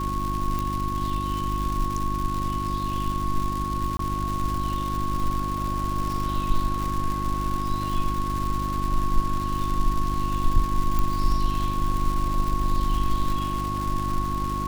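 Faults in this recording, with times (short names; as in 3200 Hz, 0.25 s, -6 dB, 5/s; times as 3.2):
crackle 310/s -28 dBFS
hum 50 Hz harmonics 7 -30 dBFS
tone 1100 Hz -28 dBFS
0.59 pop
3.97–3.99 gap 23 ms
10.99 pop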